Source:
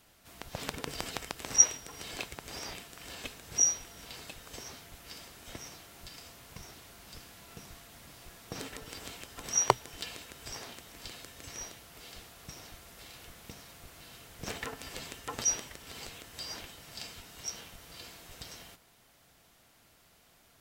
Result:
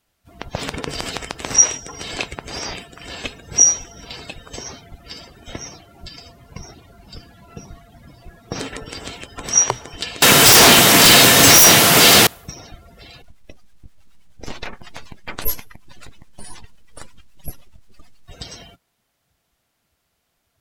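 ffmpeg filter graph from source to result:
-filter_complex "[0:a]asettb=1/sr,asplit=3[a][b][c];[a]atrim=end=10.224[d];[b]atrim=start=10.22:end=12.27,asetpts=PTS-STARTPTS,afade=t=in:d=0.004:c=qsin,afade=t=out:st=2.046:d=0.004:c=qsin,highpass=f=120:w=0.5412,highpass=f=120:w=1.3066,acontrast=49,aeval=exprs='0.112*sin(PI/2*8.91*val(0)/0.112)':c=same[e];[c]atrim=start=12.266[f];[d][e]acrossfade=d=0.004:c1=hsin:c2=qsin[g];[g][f]acrossfade=d=0.004:c1=qsin:c2=hsin,asettb=1/sr,asplit=3[h][i][j];[h]atrim=end=13.224[k];[i]atrim=start=13.22:end=18.28,asetpts=PTS-STARTPTS,afade=t=in:d=0.004:c=qsin,afade=t=out:st=5.056:d=0.004:c=qsin,lowpass=10k,aeval=exprs='abs(val(0))':c=same,acrossover=split=560[l][m];[l]aeval=exprs='val(0)*(1-0.5/2+0.5/2*cos(2*PI*9.4*n/s))':c=same[n];[m]aeval=exprs='val(0)*(1-0.5/2-0.5/2*cos(2*PI*9.4*n/s))':c=same[o];[n][o]amix=inputs=2:normalize=0[p];[j]atrim=start=18.276[q];[k][p]acrossfade=d=0.004:c1=hsin:c2=qsin[r];[r][q]acrossfade=d=0.004:c1=qsin:c2=hsin,afftdn=nr=22:nf=-50,alimiter=level_in=15dB:limit=-1dB:release=50:level=0:latency=1,volume=-1dB"

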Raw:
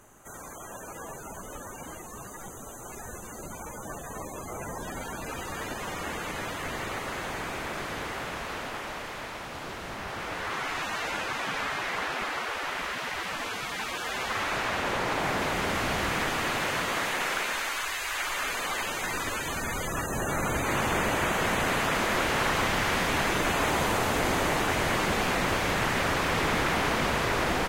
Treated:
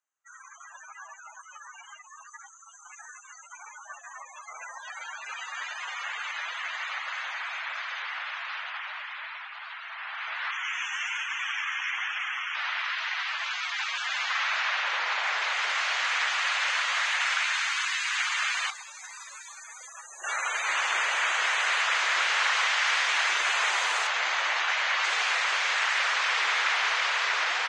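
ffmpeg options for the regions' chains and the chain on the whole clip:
-filter_complex "[0:a]asettb=1/sr,asplit=3[a][b][c];[a]atrim=end=10.514[d];[b]atrim=start=10.51:end=12.55,asetpts=PTS-STARTPTS,afade=t=in:d=0.004:c=qsin,afade=t=out:st=2.036:d=0.004:c=qsin,tiltshelf=f=1.4k:g=-5,flanger=delay=4.7:depth=9.2:regen=-6:speed=1.2:shape=triangular,asuperstop=centerf=4300:order=8:qfactor=2.2[e];[c]atrim=start=12.546[f];[d][e]acrossfade=d=0.004:c1=hsin:c2=qsin[g];[g][f]acrossfade=d=0.004:c1=qsin:c2=hsin,asettb=1/sr,asplit=3[h][i][j];[h]atrim=end=18.704[k];[i]atrim=start=18.7:end=20.24,asetpts=PTS-STARTPTS,afade=t=in:d=0.004:c=qsin,afade=t=out:st=1.536:d=0.004:c=qsin,equalizer=f=1.9k:t=o:w=2.4:g=-14,bandreject=f=3k:w=7.5[l];[j]atrim=start=20.236[m];[k][l]acrossfade=d=0.004:c1=hsin:c2=qsin[n];[n][m]acrossfade=d=0.004:c1=qsin:c2=hsin,asettb=1/sr,asplit=3[o][p][q];[o]atrim=end=24.074[r];[p]atrim=start=24.07:end=25.04,asetpts=PTS-STARTPTS,afade=t=in:d=0.004:c=qsin,afade=t=out:st=0.966:d=0.004:c=qsin,equalizer=f=410:w=4.1:g=-4,adynamicsmooth=sensitivity=5.5:basefreq=5.5k[s];[q]atrim=start=25.036[t];[r][s]acrossfade=d=0.004:c1=hsin:c2=qsin[u];[u][t]acrossfade=d=0.004:c1=qsin:c2=hsin,highpass=1.4k,afftdn=nr=35:nf=-44,lowpass=f=7.6k:w=0.5412,lowpass=f=7.6k:w=1.3066,volume=5.5dB"

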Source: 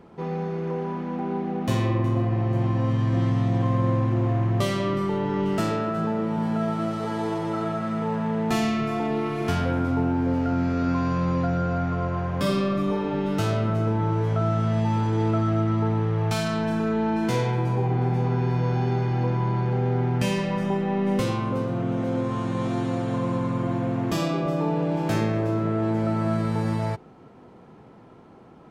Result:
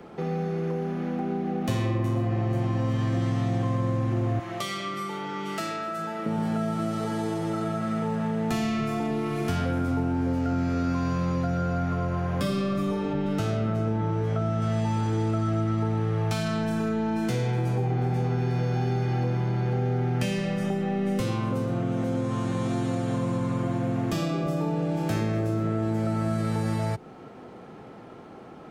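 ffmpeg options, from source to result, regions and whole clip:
-filter_complex "[0:a]asettb=1/sr,asplit=3[a][b][c];[a]atrim=end=4.394[d];[b]atrim=start=4.39:end=6.26,asetpts=PTS-STARTPTS,afade=t=in:d=0.004:c=qsin,afade=t=out:st=1.866:d=0.004:c=qsin,highpass=f=1.2k:p=1,aecho=1:1:6:0.66,atrim=end_sample=82467[e];[c]atrim=start=6.256[f];[d][e]acrossfade=d=0.004:c1=hsin:c2=qsin[g];[g][f]acrossfade=d=0.004:c1=qsin:c2=hsin,asettb=1/sr,asplit=3[h][i][j];[h]atrim=end=13.134[k];[i]atrim=start=13.13:end=14.62,asetpts=PTS-STARTPTS,afade=t=in:d=0.004:c=qsin,afade=t=out:st=1.486:d=0.004:c=qsin,lowpass=f=3.6k:p=1,asplit=2[l][m];[m]adelay=14,volume=-13dB[n];[l][n]amix=inputs=2:normalize=0,atrim=end_sample=65709[o];[j]atrim=start=14.616[p];[k][o]acrossfade=d=0.004:c1=hsin:c2=qsin[q];[q][p]acrossfade=d=0.004:c1=qsin:c2=hsin,acrossover=split=130|270|6100[r][s][t][u];[r]acompressor=threshold=-30dB:ratio=4[v];[s]acompressor=threshold=-34dB:ratio=4[w];[t]acompressor=threshold=-38dB:ratio=4[x];[u]acompressor=threshold=-54dB:ratio=4[y];[v][w][x][y]amix=inputs=4:normalize=0,lowshelf=f=230:g=-7,bandreject=f=980:w=9.4,volume=7dB"

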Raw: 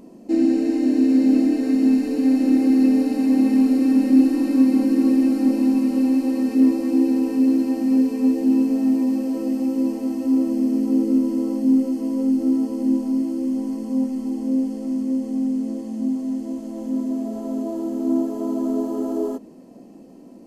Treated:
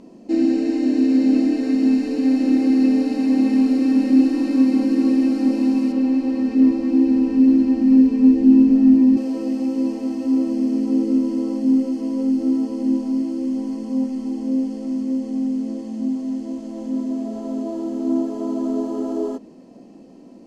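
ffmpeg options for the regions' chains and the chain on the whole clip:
-filter_complex "[0:a]asettb=1/sr,asplit=3[a][b][c];[a]atrim=end=5.924[d];[b]atrim=start=5.92:end=9.17,asetpts=PTS-STARTPTS,afade=t=in:d=0.004:c=qsin,afade=t=out:st=3.246:d=0.004:c=qsin,lowpass=f=3k:p=1,asubboost=boost=7.5:cutoff=220[e];[c]atrim=start=9.166[f];[d][e]acrossfade=d=0.004:c1=hsin:c2=qsin[g];[g][f]acrossfade=d=0.004:c1=qsin:c2=hsin,lowpass=4.9k,highshelf=f=3.7k:g=8.5"

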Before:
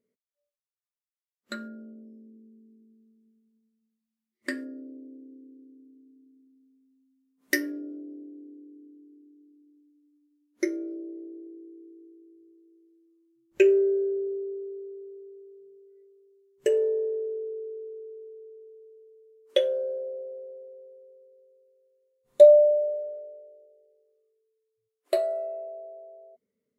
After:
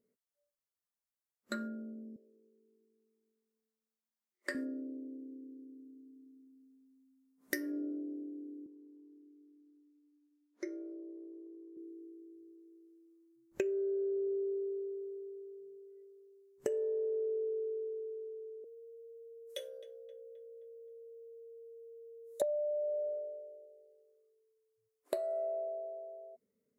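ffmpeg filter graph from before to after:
-filter_complex "[0:a]asettb=1/sr,asplit=3[a][b][c];[a]atrim=end=2.164[d];[b]atrim=start=2.16:end=4.55,asetpts=PTS-STARTPTS,afade=t=in:d=0.004:c=qsin,afade=t=out:st=2.386:d=0.004:c=qsin,highpass=f=410:w=0.5412,highpass=f=410:w=1.3066,equalizer=f=11k:w=1.3:g=-5[e];[c]atrim=start=4.546[f];[d][e]acrossfade=d=0.004:c1=hsin:c2=qsin[g];[g][f]acrossfade=d=0.004:c1=qsin:c2=hsin,asettb=1/sr,asplit=3[h][i][j];[h]atrim=end=8.664[k];[i]atrim=start=8.66:end=11.77,asetpts=PTS-STARTPTS,afade=t=in:d=0.004:c=qsin,afade=t=out:st=3.106:d=0.004:c=qsin,acompressor=threshold=-51dB:ratio=1.5:attack=3.2:release=140:knee=1:detection=peak,highpass=350,lowpass=5.5k[l];[j]atrim=start=11.766[m];[k][l]acrossfade=d=0.004:c1=hsin:c2=qsin[n];[n][m]acrossfade=d=0.004:c1=qsin:c2=hsin,asettb=1/sr,asplit=3[o][p][q];[o]atrim=end=18.644[r];[p]atrim=start=18.64:end=22.42,asetpts=PTS-STARTPTS,afade=t=in:d=0.004:c=qsin,afade=t=out:st=3.776:d=0.004:c=qsin,aderivative,asplit=2[s][t];[t]adelay=263,lowpass=f=2.7k:p=1,volume=-15dB,asplit=2[u][v];[v]adelay=263,lowpass=f=2.7k:p=1,volume=0.53,asplit=2[w][x];[x]adelay=263,lowpass=f=2.7k:p=1,volume=0.53,asplit=2[y][z];[z]adelay=263,lowpass=f=2.7k:p=1,volume=0.53,asplit=2[aa][ab];[ab]adelay=263,lowpass=f=2.7k:p=1,volume=0.53[ac];[s][u][w][y][aa][ac]amix=inputs=6:normalize=0,atrim=end_sample=166698,aeval=exprs='val(0)+0.00355*sin(2*PI*460*n/s)':c=same[ad];[q]atrim=start=22.416[ae];[r][ad]acrossfade=d=0.004:c1=hsin:c2=qsin[af];[af][ae]acrossfade=d=0.004:c1=qsin:c2=hsin,equalizer=f=3k:t=o:w=1.2:g=-8.5,acompressor=threshold=-32dB:ratio=12"

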